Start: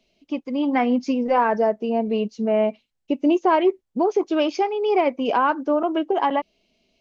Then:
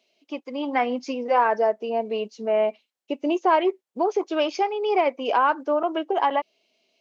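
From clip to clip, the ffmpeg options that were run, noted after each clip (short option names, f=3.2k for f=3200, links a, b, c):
-af "highpass=420"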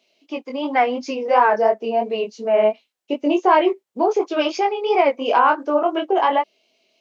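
-af "flanger=delay=19.5:depth=3.8:speed=2.8,volume=7.5dB"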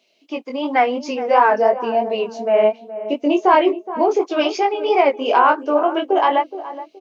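-filter_complex "[0:a]asplit=2[a][b];[b]adelay=421,lowpass=f=900:p=1,volume=-12dB,asplit=2[c][d];[d]adelay=421,lowpass=f=900:p=1,volume=0.3,asplit=2[e][f];[f]adelay=421,lowpass=f=900:p=1,volume=0.3[g];[a][c][e][g]amix=inputs=4:normalize=0,volume=1.5dB"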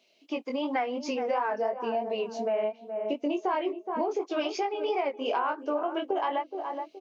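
-af "acompressor=threshold=-24dB:ratio=4,volume=-3.5dB"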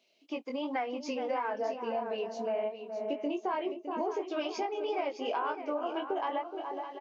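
-af "aecho=1:1:610:0.316,volume=-4.5dB"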